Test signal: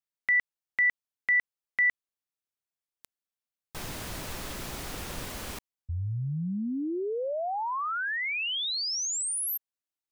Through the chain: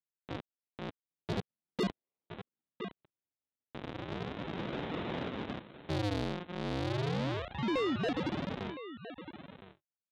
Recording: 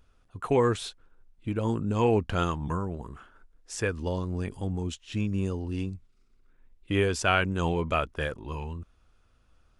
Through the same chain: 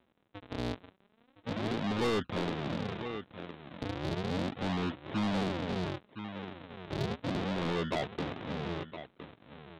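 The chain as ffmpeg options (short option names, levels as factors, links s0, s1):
-filter_complex "[0:a]lowshelf=f=420:g=9,aresample=8000,acrusher=samples=25:mix=1:aa=0.000001:lfo=1:lforange=40:lforate=0.35,aresample=44100,highpass=200,dynaudnorm=f=170:g=11:m=2.82,asplit=2[s0][s1];[s1]aecho=0:1:1013:0.168[s2];[s0][s2]amix=inputs=2:normalize=0,asoftclip=type=tanh:threshold=0.112,volume=0.447"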